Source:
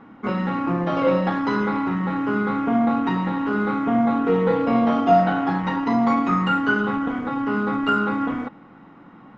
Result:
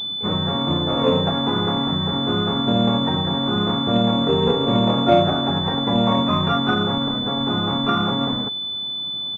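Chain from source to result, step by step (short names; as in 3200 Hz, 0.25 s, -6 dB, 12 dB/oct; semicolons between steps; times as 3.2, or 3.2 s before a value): harmoniser -12 st -5 dB, -3 st -1 dB, +12 st -11 dB; pulse-width modulation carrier 3500 Hz; gain -2.5 dB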